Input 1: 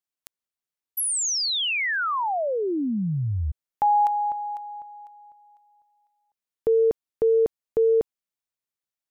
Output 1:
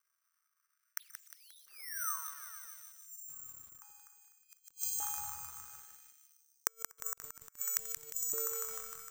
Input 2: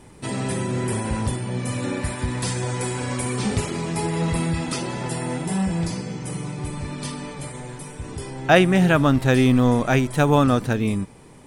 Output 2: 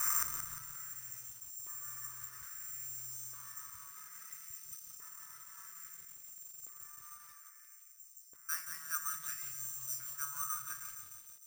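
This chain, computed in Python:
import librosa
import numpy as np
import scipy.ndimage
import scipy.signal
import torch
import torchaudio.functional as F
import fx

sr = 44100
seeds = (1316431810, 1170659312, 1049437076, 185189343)

p1 = scipy.signal.medfilt(x, 15)
p2 = fx.high_shelf(p1, sr, hz=5200.0, db=10.0)
p3 = fx.comb_fb(p2, sr, f0_hz=160.0, decay_s=0.68, harmonics='all', damping=0.2, mix_pct=80)
p4 = fx.rider(p3, sr, range_db=5, speed_s=2.0)
p5 = p3 + (p4 * librosa.db_to_amplitude(-2.5))
p6 = fx.curve_eq(p5, sr, hz=(130.0, 220.0, 410.0, 760.0, 1200.0, 2700.0, 3800.0, 10000.0), db=(0, -19, -28, -28, 14, 0, -8, -13))
p7 = p6 + fx.echo_opening(p6, sr, ms=153, hz=400, octaves=1, feedback_pct=70, wet_db=-6, dry=0)
p8 = (np.kron(p7[::6], np.eye(6)[0]) * 6)[:len(p7)]
p9 = fx.gate_flip(p8, sr, shuts_db=-28.0, range_db=-39)
p10 = fx.filter_lfo_highpass(p9, sr, shape='saw_up', hz=0.6, low_hz=420.0, high_hz=5200.0, q=1.4)
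p11 = fx.echo_crushed(p10, sr, ms=177, feedback_pct=55, bits=10, wet_db=-7.5)
y = p11 * librosa.db_to_amplitude(14.5)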